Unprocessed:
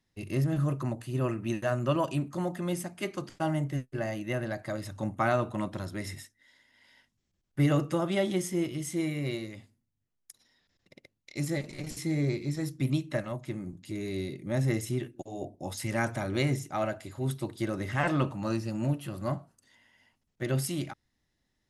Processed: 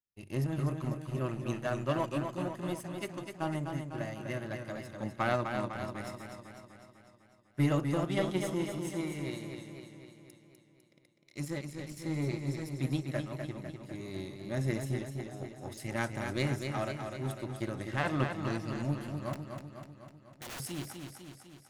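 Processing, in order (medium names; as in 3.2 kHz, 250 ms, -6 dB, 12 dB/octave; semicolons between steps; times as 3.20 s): power-law waveshaper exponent 1.4; 19.33–20.60 s: integer overflow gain 36.5 dB; modulated delay 250 ms, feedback 60%, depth 56 cents, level -6 dB; trim -1 dB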